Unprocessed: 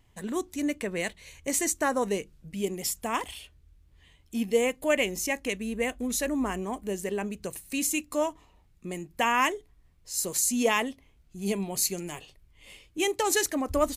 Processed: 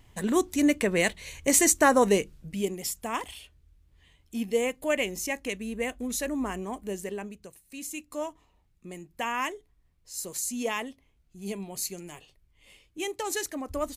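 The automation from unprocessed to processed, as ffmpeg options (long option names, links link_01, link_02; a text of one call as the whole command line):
ffmpeg -i in.wav -af "volume=15.5dB,afade=type=out:start_time=2.2:duration=0.58:silence=0.375837,afade=type=out:start_time=6.96:duration=0.61:silence=0.223872,afade=type=in:start_time=7.57:duration=0.66:silence=0.354813" out.wav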